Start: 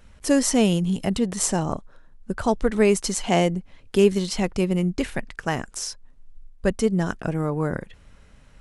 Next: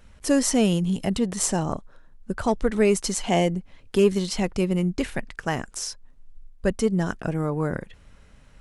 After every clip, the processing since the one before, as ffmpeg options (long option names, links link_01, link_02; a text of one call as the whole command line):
ffmpeg -i in.wav -af "acontrast=34,volume=-6dB" out.wav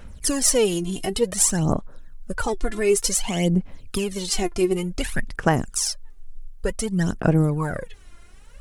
ffmpeg -i in.wav -af "alimiter=limit=-14.5dB:level=0:latency=1:release=261,highshelf=frequency=7800:gain=11,aphaser=in_gain=1:out_gain=1:delay=2.9:decay=0.72:speed=0.55:type=sinusoidal" out.wav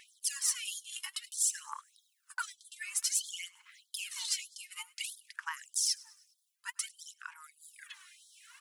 ffmpeg -i in.wav -af "areverse,acompressor=threshold=-31dB:ratio=4,areverse,aecho=1:1:102|204|306|408:0.0708|0.0375|0.0199|0.0105,afftfilt=real='re*gte(b*sr/1024,820*pow(3200/820,0.5+0.5*sin(2*PI*1.6*pts/sr)))':imag='im*gte(b*sr/1024,820*pow(3200/820,0.5+0.5*sin(2*PI*1.6*pts/sr)))':win_size=1024:overlap=0.75,volume=2dB" out.wav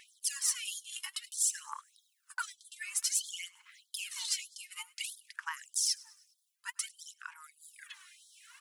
ffmpeg -i in.wav -af anull out.wav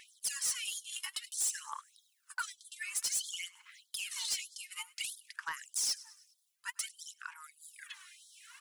ffmpeg -i in.wav -af "asoftclip=type=tanh:threshold=-29dB,volume=1.5dB" out.wav